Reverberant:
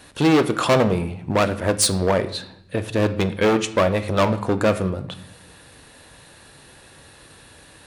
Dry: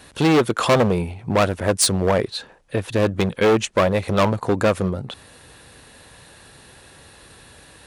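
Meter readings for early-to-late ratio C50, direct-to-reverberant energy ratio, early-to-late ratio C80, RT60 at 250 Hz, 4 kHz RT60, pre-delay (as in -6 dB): 14.0 dB, 10.0 dB, 16.5 dB, 1.1 s, 0.65 s, 3 ms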